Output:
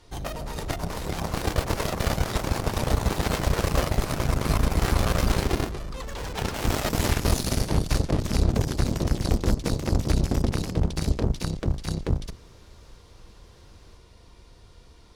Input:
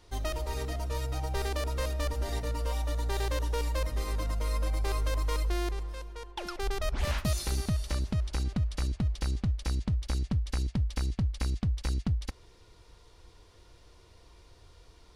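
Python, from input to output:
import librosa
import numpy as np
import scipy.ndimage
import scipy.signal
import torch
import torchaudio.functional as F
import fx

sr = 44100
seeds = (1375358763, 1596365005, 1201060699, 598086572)

y = fx.octave_divider(x, sr, octaves=1, level_db=0.0)
y = fx.echo_pitch(y, sr, ms=472, semitones=2, count=3, db_per_echo=-3.0)
y = fx.cheby_harmonics(y, sr, harmonics=(7,), levels_db=(-9,), full_scale_db=-13.0)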